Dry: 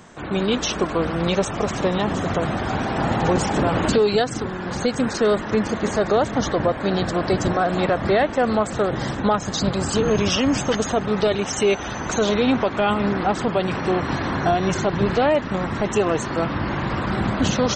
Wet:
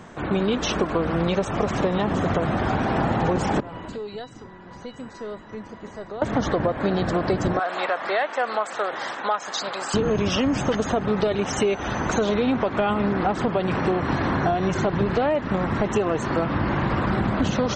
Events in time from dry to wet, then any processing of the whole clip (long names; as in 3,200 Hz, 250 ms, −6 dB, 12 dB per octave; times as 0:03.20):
0:03.60–0:06.22: tuned comb filter 980 Hz, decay 0.32 s, mix 90%
0:07.59–0:09.94: high-pass filter 820 Hz
whole clip: high-shelf EQ 4,000 Hz −10.5 dB; downward compressor, threshold −22 dBFS; level +3.5 dB